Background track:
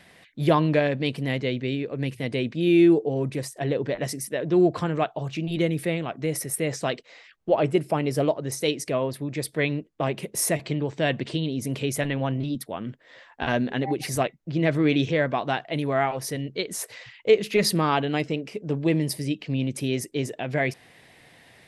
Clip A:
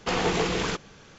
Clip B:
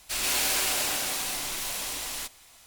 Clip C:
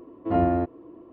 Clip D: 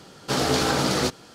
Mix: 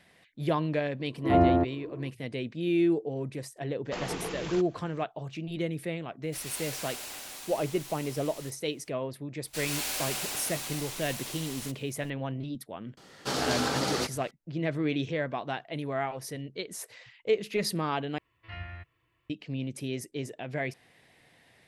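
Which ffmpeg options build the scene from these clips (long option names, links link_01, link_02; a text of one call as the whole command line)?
ffmpeg -i bed.wav -i cue0.wav -i cue1.wav -i cue2.wav -i cue3.wav -filter_complex "[3:a]asplit=2[link_01][link_02];[2:a]asplit=2[link_03][link_04];[0:a]volume=-8dB[link_05];[link_01]dynaudnorm=framelen=120:gausssize=3:maxgain=11.5dB[link_06];[4:a]lowshelf=frequency=340:gain=-4[link_07];[link_02]firequalizer=gain_entry='entry(130,0);entry(230,-28);entry(1900,15)':delay=0.05:min_phase=1[link_08];[link_05]asplit=2[link_09][link_10];[link_09]atrim=end=18.184[link_11];[link_08]atrim=end=1.12,asetpts=PTS-STARTPTS,volume=-11.5dB[link_12];[link_10]atrim=start=19.296[link_13];[link_06]atrim=end=1.12,asetpts=PTS-STARTPTS,volume=-9dB,afade=type=in:duration=0.004:curve=hsin,afade=type=out:start_time=1.116:duration=0.004:curve=hsin,adelay=990[link_14];[1:a]atrim=end=1.18,asetpts=PTS-STARTPTS,volume=-11dB,afade=type=in:duration=0.004:curve=hsin,afade=type=out:start_time=1.176:duration=0.004:curve=hsin,adelay=169785S[link_15];[link_03]atrim=end=2.66,asetpts=PTS-STARTPTS,volume=-13dB,afade=type=in:duration=0.004:curve=hsin,afade=type=out:start_time=2.656:duration=0.004:curve=hsin,adelay=6230[link_16];[link_04]atrim=end=2.66,asetpts=PTS-STARTPTS,volume=-7dB,afade=type=in:duration=0.004:curve=hsin,afade=type=out:start_time=2.656:duration=0.004:curve=hsin,adelay=9440[link_17];[link_07]atrim=end=1.34,asetpts=PTS-STARTPTS,volume=-6dB,afade=type=in:duration=0.004:curve=hsin,afade=type=out:start_time=1.336:duration=0.004:curve=hsin,adelay=12970[link_18];[link_11][link_12]acrossfade=duration=0.004:curve1=hsin:curve2=hsin[link_19];[link_19][link_13]acrossfade=duration=0.004:curve1=hsin:curve2=hsin[link_20];[link_20][link_14][link_15][link_16][link_17][link_18]amix=inputs=6:normalize=0" out.wav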